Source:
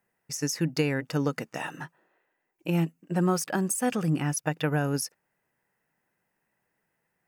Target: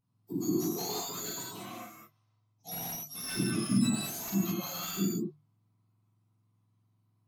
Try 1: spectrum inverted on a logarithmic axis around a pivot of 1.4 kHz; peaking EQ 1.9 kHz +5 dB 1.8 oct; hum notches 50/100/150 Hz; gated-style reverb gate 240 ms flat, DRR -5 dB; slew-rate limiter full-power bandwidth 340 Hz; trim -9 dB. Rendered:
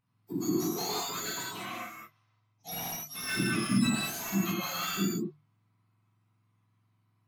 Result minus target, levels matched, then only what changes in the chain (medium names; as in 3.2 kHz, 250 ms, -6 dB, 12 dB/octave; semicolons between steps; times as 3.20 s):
2 kHz band +8.0 dB
change: peaking EQ 1.9 kHz -6 dB 1.8 oct